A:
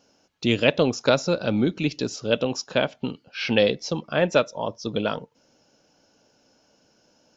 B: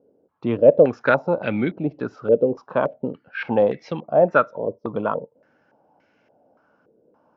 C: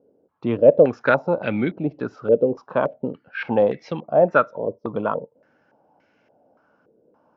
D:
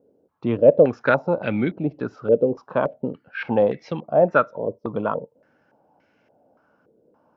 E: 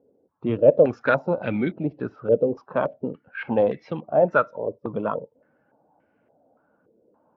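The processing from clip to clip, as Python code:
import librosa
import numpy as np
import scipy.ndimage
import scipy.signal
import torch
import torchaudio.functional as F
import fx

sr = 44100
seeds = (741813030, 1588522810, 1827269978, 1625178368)

y1 = scipy.signal.sosfilt(scipy.signal.butter(2, 80.0, 'highpass', fs=sr, output='sos'), x)
y1 = fx.filter_held_lowpass(y1, sr, hz=3.5, low_hz=450.0, high_hz=2100.0)
y1 = y1 * 10.0 ** (-1.0 / 20.0)
y2 = y1
y3 = fx.low_shelf(y2, sr, hz=170.0, db=3.5)
y3 = y3 * 10.0 ** (-1.0 / 20.0)
y4 = fx.spec_quant(y3, sr, step_db=15)
y4 = fx.env_lowpass(y4, sr, base_hz=1500.0, full_db=-14.5)
y4 = y4 * 10.0 ** (-1.5 / 20.0)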